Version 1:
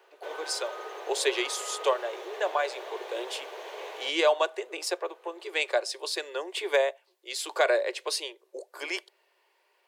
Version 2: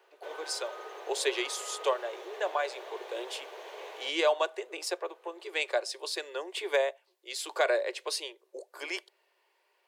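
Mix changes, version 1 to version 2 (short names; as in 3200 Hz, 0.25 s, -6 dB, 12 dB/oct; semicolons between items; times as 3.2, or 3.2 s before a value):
speech -3.0 dB; background -4.0 dB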